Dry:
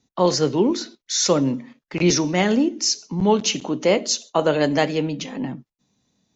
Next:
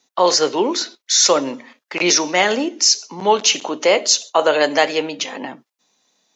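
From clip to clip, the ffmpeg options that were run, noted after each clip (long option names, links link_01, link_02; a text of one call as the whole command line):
ffmpeg -i in.wav -filter_complex "[0:a]highpass=580,asplit=2[link_01][link_02];[link_02]alimiter=limit=-15dB:level=0:latency=1,volume=-1.5dB[link_03];[link_01][link_03]amix=inputs=2:normalize=0,volume=3.5dB" out.wav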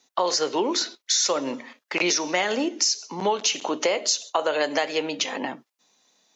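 ffmpeg -i in.wav -af "equalizer=frequency=82:width=0.41:gain=-3,acompressor=threshold=-20dB:ratio=6" out.wav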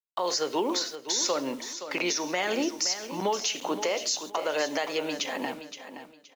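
ffmpeg -i in.wav -filter_complex "[0:a]acrusher=bits=7:mix=0:aa=0.000001,alimiter=limit=-14.5dB:level=0:latency=1:release=101,asplit=2[link_01][link_02];[link_02]aecho=0:1:521|1042|1563:0.282|0.0705|0.0176[link_03];[link_01][link_03]amix=inputs=2:normalize=0,volume=-3dB" out.wav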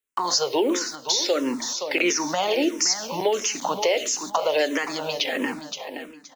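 ffmpeg -i in.wav -filter_complex "[0:a]asplit=2[link_01][link_02];[link_02]acompressor=threshold=-38dB:ratio=6,volume=-0.5dB[link_03];[link_01][link_03]amix=inputs=2:normalize=0,asplit=2[link_04][link_05];[link_05]afreqshift=-1.5[link_06];[link_04][link_06]amix=inputs=2:normalize=1,volume=6dB" out.wav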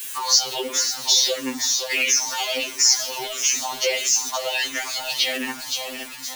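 ffmpeg -i in.wav -af "aeval=exprs='val(0)+0.5*0.0316*sgn(val(0))':channel_layout=same,tiltshelf=frequency=1300:gain=-8,afftfilt=real='re*2.45*eq(mod(b,6),0)':imag='im*2.45*eq(mod(b,6),0)':win_size=2048:overlap=0.75" out.wav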